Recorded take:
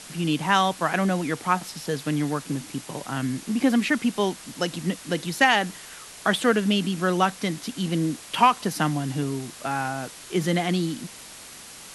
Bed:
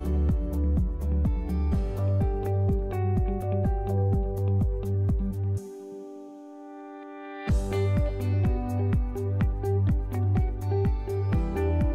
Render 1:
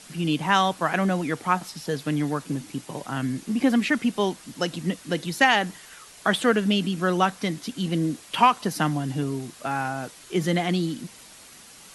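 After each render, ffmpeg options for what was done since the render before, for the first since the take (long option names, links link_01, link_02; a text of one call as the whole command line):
ffmpeg -i in.wav -af "afftdn=noise_reduction=6:noise_floor=-43" out.wav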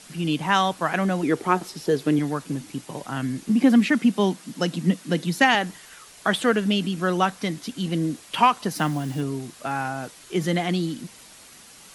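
ffmpeg -i in.wav -filter_complex "[0:a]asettb=1/sr,asplit=3[link_01][link_02][link_03];[link_01]atrim=end=1.234[link_04];[link_02]atrim=start=1.23:end=2.19,asetpts=PTS-STARTPTS,afade=type=in:duration=0.004:curve=qsin,afade=type=out:start_time=0.956:duration=0.004:curve=qsin,equalizer=frequency=380:width_type=o:width=0.7:gain=12.5[link_05];[link_03]atrim=start=2.186[link_06];[link_04][link_05]acrossfade=duration=0.004:curve1=hsin:curve2=qsin[link_07];[link_07][link_06]acrossfade=duration=0.004:curve1=qsin:curve2=hsin,asettb=1/sr,asplit=3[link_08][link_09][link_10];[link_08]atrim=end=3.494[link_11];[link_09]atrim=start=3.49:end=5.55,asetpts=PTS-STARTPTS,afade=type=in:duration=0.004:curve=qsin,afade=type=out:start_time=2.056:duration=0.004:curve=qsin,highpass=frequency=180:width_type=q:width=2.1[link_12];[link_10]atrim=start=5.546[link_13];[link_11][link_12]acrossfade=duration=0.004:curve1=hsin:curve2=qsin[link_14];[link_14][link_13]acrossfade=duration=0.004:curve1=qsin:curve2=hsin,asettb=1/sr,asplit=3[link_15][link_16][link_17];[link_15]atrim=end=8.754[link_18];[link_16]atrim=start=8.75:end=9.21,asetpts=PTS-STARTPTS,afade=type=in:duration=0.004:curve=qsin,afade=type=out:start_time=0.456:duration=0.004:curve=qsin,acrusher=bits=6:mix=0:aa=0.5[link_19];[link_17]atrim=start=9.206[link_20];[link_18][link_19]acrossfade=duration=0.004:curve1=hsin:curve2=qsin[link_21];[link_21][link_20]acrossfade=duration=0.004:curve1=qsin:curve2=hsin" out.wav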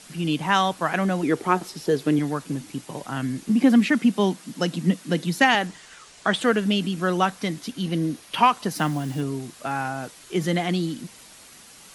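ffmpeg -i in.wav -filter_complex "[0:a]asettb=1/sr,asplit=3[link_01][link_02][link_03];[link_01]atrim=end=5.674[link_04];[link_02]atrim=start=5.67:end=6.41,asetpts=PTS-STARTPTS,afade=type=in:duration=0.004:curve=qsin,afade=type=out:start_time=0.736:duration=0.004:curve=qsin,lowpass=frequency=8700:width=0.5412,lowpass=frequency=8700:width=1.3066[link_05];[link_03]atrim=start=6.406[link_06];[link_04][link_05]acrossfade=duration=0.004:curve1=hsin:curve2=qsin[link_07];[link_07][link_06]acrossfade=duration=0.004:curve1=qsin:curve2=hsin,asettb=1/sr,asplit=3[link_08][link_09][link_10];[link_08]atrim=end=7.714[link_11];[link_09]atrim=start=7.71:end=8.46,asetpts=PTS-STARTPTS,afade=type=in:duration=0.004:curve=qsin,afade=type=out:start_time=0.746:duration=0.004:curve=qsin,equalizer=frequency=7600:width=6.9:gain=-10[link_12];[link_10]atrim=start=8.456[link_13];[link_11][link_12]acrossfade=duration=0.004:curve1=hsin:curve2=qsin[link_14];[link_14][link_13]acrossfade=duration=0.004:curve1=qsin:curve2=hsin" out.wav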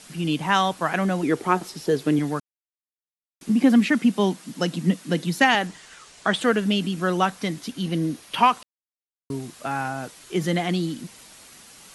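ffmpeg -i in.wav -filter_complex "[0:a]asplit=5[link_01][link_02][link_03][link_04][link_05];[link_01]atrim=end=2.4,asetpts=PTS-STARTPTS,afade=type=out:start_time=2.396:duration=0.004:curve=hsin[link_06];[link_02]atrim=start=2.4:end=3.41,asetpts=PTS-STARTPTS,volume=0[link_07];[link_03]atrim=start=3.41:end=8.63,asetpts=PTS-STARTPTS,afade=type=in:duration=0.004:curve=hsin,afade=type=out:start_time=5.216:duration=0.004:curve=hsin[link_08];[link_04]atrim=start=8.63:end=9.3,asetpts=PTS-STARTPTS,volume=0[link_09];[link_05]atrim=start=9.3,asetpts=PTS-STARTPTS,afade=type=in:duration=0.004:curve=hsin[link_10];[link_06][link_07][link_08][link_09][link_10]concat=n=5:v=0:a=1" out.wav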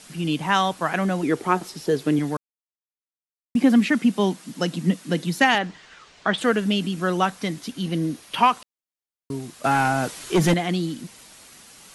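ffmpeg -i in.wav -filter_complex "[0:a]asettb=1/sr,asplit=3[link_01][link_02][link_03];[link_01]atrim=end=5.584[link_04];[link_02]atrim=start=5.58:end=6.38,asetpts=PTS-STARTPTS,afade=type=in:duration=0.004:curve=qsin,afade=type=out:start_time=0.796:duration=0.004:curve=qsin,lowpass=4400[link_05];[link_03]atrim=start=6.376[link_06];[link_04][link_05]acrossfade=duration=0.004:curve1=hsin:curve2=qsin[link_07];[link_07][link_06]acrossfade=duration=0.004:curve1=qsin:curve2=hsin,asettb=1/sr,asplit=3[link_08][link_09][link_10];[link_08]atrim=end=9.644[link_11];[link_09]atrim=start=9.64:end=10.54,asetpts=PTS-STARTPTS,afade=type=in:duration=0.004:curve=qsin,afade=type=out:start_time=0.896:duration=0.004:curve=qsin,aeval=exprs='0.237*sin(PI/2*1.78*val(0)/0.237)':channel_layout=same[link_12];[link_10]atrim=start=10.536[link_13];[link_11][link_12]acrossfade=duration=0.004:curve1=hsin:curve2=qsin[link_14];[link_14][link_13]acrossfade=duration=0.004:curve1=qsin:curve2=hsin,asplit=3[link_15][link_16][link_17];[link_15]atrim=end=2.37,asetpts=PTS-STARTPTS,afade=type=out:start_time=2.366:duration=0.004:curve=hsin[link_18];[link_16]atrim=start=2.37:end=3.55,asetpts=PTS-STARTPTS,volume=0[link_19];[link_17]atrim=start=3.55,asetpts=PTS-STARTPTS,afade=type=in:duration=0.004:curve=hsin[link_20];[link_18][link_19][link_20]concat=n=3:v=0:a=1" out.wav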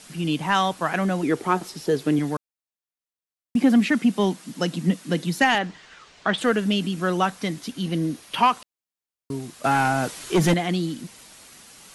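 ffmpeg -i in.wav -af "asoftclip=type=tanh:threshold=-6dB" out.wav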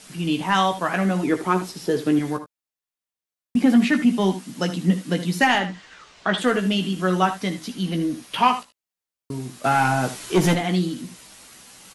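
ffmpeg -i in.wav -filter_complex "[0:a]asplit=2[link_01][link_02];[link_02]adelay=16,volume=-7dB[link_03];[link_01][link_03]amix=inputs=2:normalize=0,aecho=1:1:60|77:0.158|0.237" out.wav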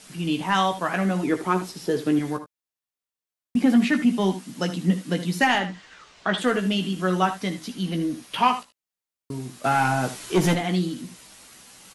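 ffmpeg -i in.wav -af "volume=-2dB" out.wav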